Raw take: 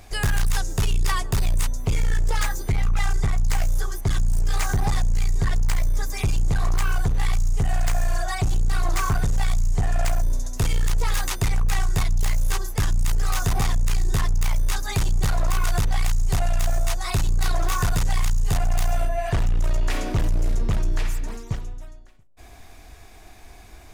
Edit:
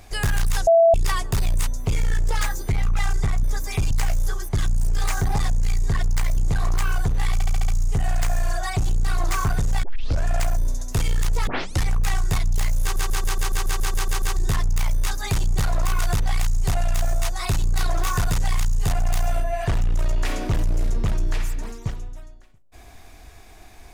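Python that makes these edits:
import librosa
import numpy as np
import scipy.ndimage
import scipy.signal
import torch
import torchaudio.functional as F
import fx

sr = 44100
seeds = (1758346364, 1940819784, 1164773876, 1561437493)

y = fx.edit(x, sr, fx.bleep(start_s=0.67, length_s=0.27, hz=666.0, db=-10.5),
    fx.move(start_s=5.89, length_s=0.48, to_s=3.43),
    fx.stutter(start_s=7.33, slice_s=0.07, count=6),
    fx.tape_start(start_s=9.48, length_s=0.42),
    fx.tape_start(start_s=11.12, length_s=0.37),
    fx.stutter_over(start_s=12.47, slice_s=0.14, count=11), tone=tone)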